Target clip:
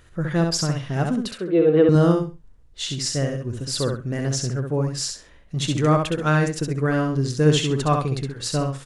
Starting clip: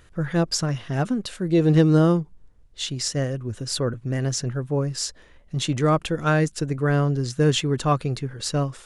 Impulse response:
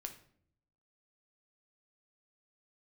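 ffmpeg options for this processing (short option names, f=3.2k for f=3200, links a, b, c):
-filter_complex "[0:a]asettb=1/sr,asplit=3[a][b][c];[a]atrim=end=1.314[d];[b]atrim=start=1.31:end=1.89,asetpts=PTS-STARTPTS,afade=t=in:d=0.004:c=qsin,afade=t=out:st=0.576:d=0.004:c=qsin,highpass=280,equalizer=f=450:t=q:w=4:g=9,equalizer=f=890:t=q:w=4:g=-5,equalizer=f=1.3k:t=q:w=4:g=4,equalizer=f=1.9k:t=q:w=4:g=-4,lowpass=f=2.9k:w=0.5412,lowpass=f=2.9k:w=1.3066[e];[c]atrim=start=1.886[f];[d][e]acrossfade=d=0.004:c1=hsin:c2=qsin[g];[g][f]acrossfade=d=0.004:c1=qsin:c2=hsin,aecho=1:1:66|132|198:0.596|0.125|0.0263"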